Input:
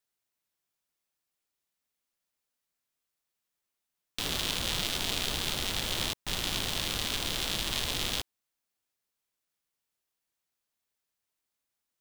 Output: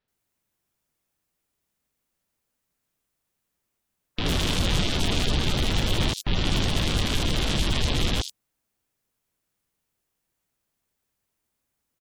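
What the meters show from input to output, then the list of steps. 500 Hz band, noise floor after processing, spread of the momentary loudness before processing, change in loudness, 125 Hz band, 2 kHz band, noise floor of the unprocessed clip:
+9.0 dB, -80 dBFS, 3 LU, +5.5 dB, +15.0 dB, +4.5 dB, under -85 dBFS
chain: spectral gate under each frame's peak -20 dB strong; low shelf 380 Hz +10.5 dB; bands offset in time lows, highs 80 ms, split 4200 Hz; gain +5.5 dB

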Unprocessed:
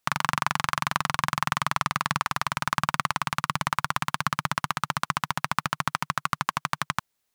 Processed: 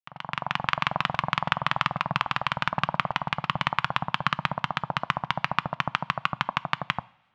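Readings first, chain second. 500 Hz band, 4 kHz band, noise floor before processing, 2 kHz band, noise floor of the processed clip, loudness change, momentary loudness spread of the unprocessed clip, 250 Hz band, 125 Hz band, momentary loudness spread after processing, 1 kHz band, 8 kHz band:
+4.5 dB, +1.0 dB, -77 dBFS, 0.0 dB, -57 dBFS, 0.0 dB, 3 LU, 0.0 dB, 0.0 dB, 4 LU, -0.5 dB, under -15 dB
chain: opening faded in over 0.70 s; LFO low-pass square 6.1 Hz 690–3000 Hz; two-slope reverb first 0.53 s, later 2.1 s, from -18 dB, DRR 19 dB

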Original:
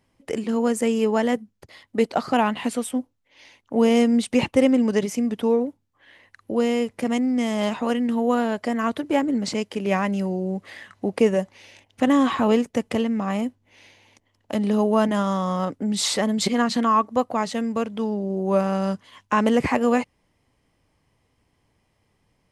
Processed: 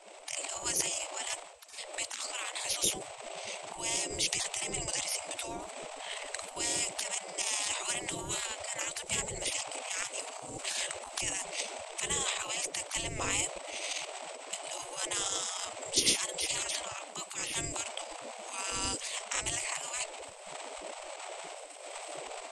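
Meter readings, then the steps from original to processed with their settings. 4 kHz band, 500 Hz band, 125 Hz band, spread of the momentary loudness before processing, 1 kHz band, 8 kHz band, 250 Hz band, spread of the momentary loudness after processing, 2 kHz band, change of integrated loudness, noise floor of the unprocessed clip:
-0.5 dB, -19.0 dB, -16.5 dB, 9 LU, -14.5 dB, +6.0 dB, -27.5 dB, 12 LU, -6.0 dB, -11.0 dB, -69 dBFS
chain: wind noise 200 Hz -20 dBFS; recorder AGC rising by 23 dB/s; band shelf 1100 Hz -13.5 dB; notches 60/120/180/240/300/360/420 Hz; transient shaper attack -3 dB, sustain +9 dB; limiter -8 dBFS, peak gain reduction 9 dB; synth low-pass 8000 Hz, resonance Q 16; spectral gate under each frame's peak -25 dB weak; gain -3 dB

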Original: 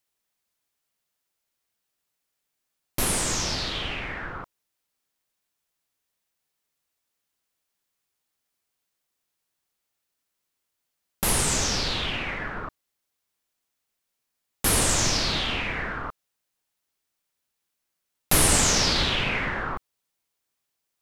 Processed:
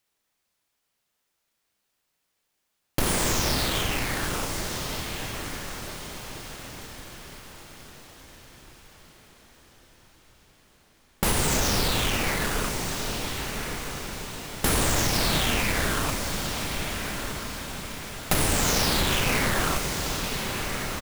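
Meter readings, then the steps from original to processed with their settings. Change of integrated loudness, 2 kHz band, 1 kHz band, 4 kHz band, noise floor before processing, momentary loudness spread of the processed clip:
-2.5 dB, +1.5 dB, +2.5 dB, 0.0 dB, -81 dBFS, 16 LU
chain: half-waves squared off; compressor 6:1, threshold -21 dBFS, peak gain reduction 10.5 dB; doubler 34 ms -11 dB; on a send: diffused feedback echo 1.302 s, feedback 48%, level -7 dB; on the sum: lo-fi delay 0.483 s, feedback 80%, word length 7-bit, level -12.5 dB

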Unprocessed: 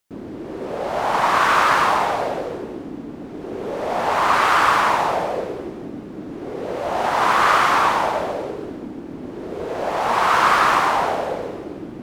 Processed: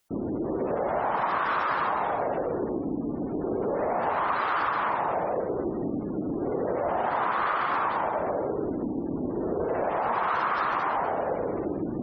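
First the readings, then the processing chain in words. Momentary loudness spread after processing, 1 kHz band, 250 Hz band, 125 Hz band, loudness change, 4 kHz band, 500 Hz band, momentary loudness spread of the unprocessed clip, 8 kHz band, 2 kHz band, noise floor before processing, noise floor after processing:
5 LU, -8.5 dB, -0.5 dB, -2.0 dB, -9.0 dB, -17.5 dB, -4.0 dB, 18 LU, under -35 dB, -11.0 dB, -35 dBFS, -32 dBFS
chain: spectral gate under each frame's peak -25 dB strong; dynamic EQ 2700 Hz, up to -5 dB, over -36 dBFS, Q 1.4; compressor 6:1, threshold -28 dBFS, peak gain reduction 15 dB; gain +3.5 dB

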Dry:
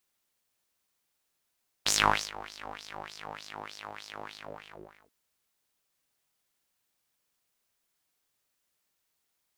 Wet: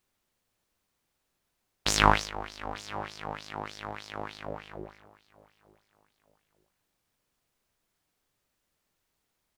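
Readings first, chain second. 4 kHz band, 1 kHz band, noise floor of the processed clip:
0.0 dB, +4.0 dB, -80 dBFS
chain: tilt -2 dB/oct; feedback echo 0.896 s, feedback 31%, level -21.5 dB; gain +4 dB

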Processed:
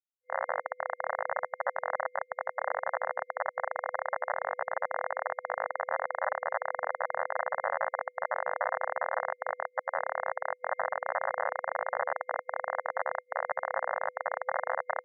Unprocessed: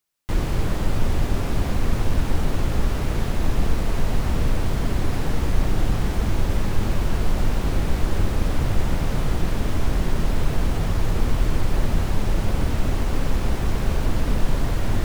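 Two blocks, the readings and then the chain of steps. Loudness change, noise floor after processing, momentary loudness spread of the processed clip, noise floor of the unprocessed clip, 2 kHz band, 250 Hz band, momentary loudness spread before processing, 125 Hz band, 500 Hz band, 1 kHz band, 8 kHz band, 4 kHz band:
-8.0 dB, -64 dBFS, 3 LU, -25 dBFS, +1.0 dB, under -40 dB, 1 LU, under -40 dB, -1.5 dB, +2.5 dB, under -40 dB, under -40 dB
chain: diffused feedback echo 1.623 s, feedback 46%, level -10.5 dB; Schmitt trigger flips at -17.5 dBFS; FFT band-pass 500–2100 Hz; gain +3.5 dB

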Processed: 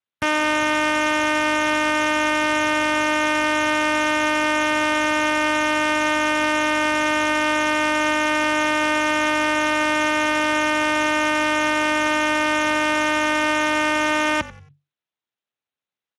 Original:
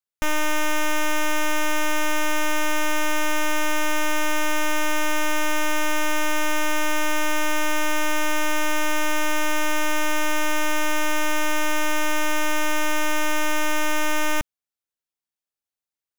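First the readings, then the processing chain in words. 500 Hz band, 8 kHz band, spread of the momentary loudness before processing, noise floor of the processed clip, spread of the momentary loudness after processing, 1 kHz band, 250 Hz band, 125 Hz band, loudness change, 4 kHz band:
+5.5 dB, -2.5 dB, 0 LU, under -85 dBFS, 0 LU, +5.5 dB, +5.5 dB, n/a, +4.5 dB, +4.0 dB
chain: downsampling 22050 Hz; frequency-shifting echo 92 ms, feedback 31%, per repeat -48 Hz, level -18 dB; gain +5.5 dB; Speex 24 kbps 32000 Hz

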